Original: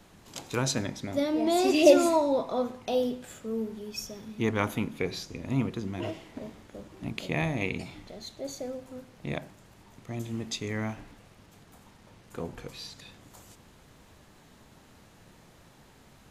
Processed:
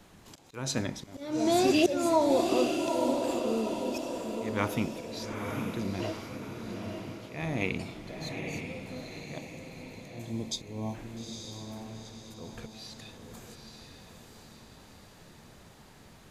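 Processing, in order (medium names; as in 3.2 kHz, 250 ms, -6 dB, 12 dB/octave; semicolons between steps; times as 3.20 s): spectral selection erased 9.37–10.94 s, 1.1–3.1 kHz; slow attack 279 ms; echo that smears into a reverb 882 ms, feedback 50%, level -4.5 dB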